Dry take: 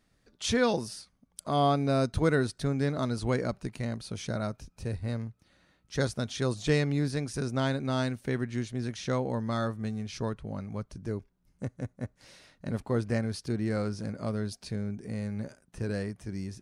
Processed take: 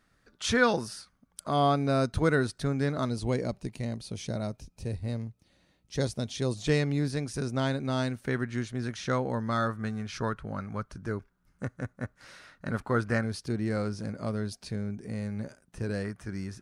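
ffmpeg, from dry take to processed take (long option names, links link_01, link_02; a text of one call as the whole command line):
ffmpeg -i in.wav -af "asetnsamples=nb_out_samples=441:pad=0,asendcmd='1.47 equalizer g 3;3.09 equalizer g -8;6.57 equalizer g -0.5;8.15 equalizer g 7;9.69 equalizer g 13;13.23 equalizer g 1.5;16.05 equalizer g 11.5',equalizer=frequency=1400:width_type=o:width=0.84:gain=9" out.wav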